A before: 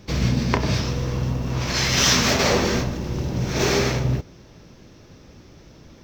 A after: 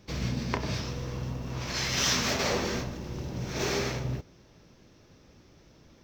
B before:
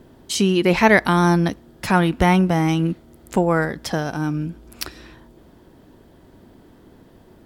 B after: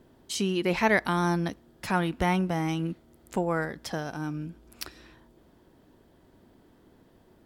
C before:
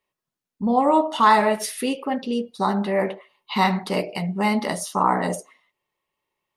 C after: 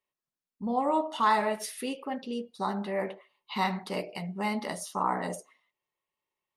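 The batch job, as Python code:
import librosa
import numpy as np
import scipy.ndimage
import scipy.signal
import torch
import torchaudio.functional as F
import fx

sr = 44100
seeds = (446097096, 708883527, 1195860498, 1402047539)

y = fx.low_shelf(x, sr, hz=320.0, db=-2.5)
y = y * 10.0 ** (-8.5 / 20.0)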